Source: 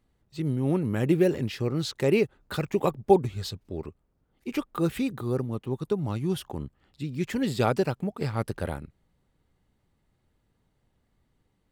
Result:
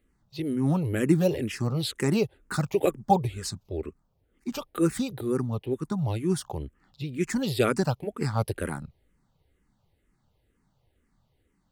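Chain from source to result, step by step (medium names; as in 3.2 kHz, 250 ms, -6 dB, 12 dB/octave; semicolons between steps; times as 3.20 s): dynamic bell 9.3 kHz, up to +7 dB, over -57 dBFS, Q 0.86; barber-pole phaser -2.1 Hz; trim +4 dB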